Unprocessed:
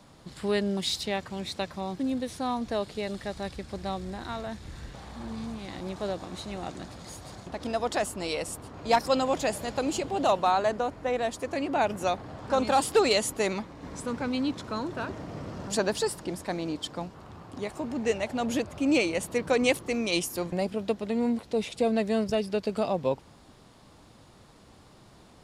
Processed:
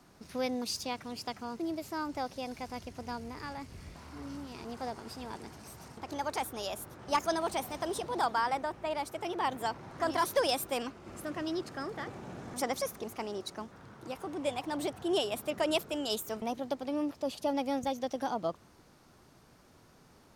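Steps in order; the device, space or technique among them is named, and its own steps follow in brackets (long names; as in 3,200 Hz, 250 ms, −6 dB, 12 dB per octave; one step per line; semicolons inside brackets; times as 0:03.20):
nightcore (speed change +25%)
level −6 dB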